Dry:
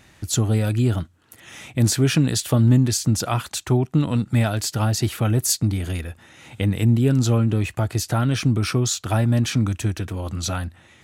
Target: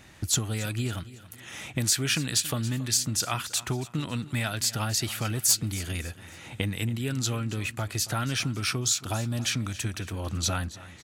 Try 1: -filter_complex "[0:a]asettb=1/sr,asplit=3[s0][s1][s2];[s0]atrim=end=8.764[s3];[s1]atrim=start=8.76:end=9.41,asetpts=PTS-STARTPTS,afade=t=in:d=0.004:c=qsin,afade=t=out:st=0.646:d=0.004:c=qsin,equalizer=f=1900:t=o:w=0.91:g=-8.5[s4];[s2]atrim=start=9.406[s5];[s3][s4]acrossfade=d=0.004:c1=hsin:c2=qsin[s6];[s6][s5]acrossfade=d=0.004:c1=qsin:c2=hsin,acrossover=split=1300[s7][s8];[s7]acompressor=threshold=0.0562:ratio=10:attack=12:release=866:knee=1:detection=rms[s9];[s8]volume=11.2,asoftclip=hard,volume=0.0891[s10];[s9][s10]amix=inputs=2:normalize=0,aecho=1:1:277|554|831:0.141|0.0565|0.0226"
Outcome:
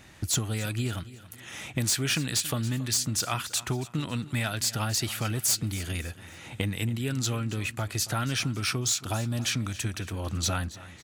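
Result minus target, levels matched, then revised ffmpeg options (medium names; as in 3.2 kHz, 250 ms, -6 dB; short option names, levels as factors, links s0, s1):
overload inside the chain: distortion +12 dB
-filter_complex "[0:a]asettb=1/sr,asplit=3[s0][s1][s2];[s0]atrim=end=8.764[s3];[s1]atrim=start=8.76:end=9.41,asetpts=PTS-STARTPTS,afade=t=in:d=0.004:c=qsin,afade=t=out:st=0.646:d=0.004:c=qsin,equalizer=f=1900:t=o:w=0.91:g=-8.5[s4];[s2]atrim=start=9.406[s5];[s3][s4]acrossfade=d=0.004:c1=hsin:c2=qsin[s6];[s6][s5]acrossfade=d=0.004:c1=qsin:c2=hsin,acrossover=split=1300[s7][s8];[s7]acompressor=threshold=0.0562:ratio=10:attack=12:release=866:knee=1:detection=rms[s9];[s8]volume=5.31,asoftclip=hard,volume=0.188[s10];[s9][s10]amix=inputs=2:normalize=0,aecho=1:1:277|554|831:0.141|0.0565|0.0226"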